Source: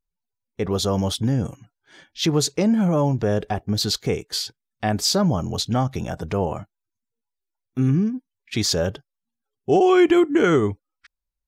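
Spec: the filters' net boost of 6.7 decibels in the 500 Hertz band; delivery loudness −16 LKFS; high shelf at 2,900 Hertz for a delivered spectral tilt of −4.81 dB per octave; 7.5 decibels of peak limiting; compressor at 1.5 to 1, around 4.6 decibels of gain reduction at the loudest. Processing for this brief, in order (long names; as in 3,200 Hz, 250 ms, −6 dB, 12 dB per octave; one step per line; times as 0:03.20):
parametric band 500 Hz +9 dB
high-shelf EQ 2,900 Hz +8.5 dB
downward compressor 1.5 to 1, threshold −20 dBFS
level +7 dB
brickwall limiter −6.5 dBFS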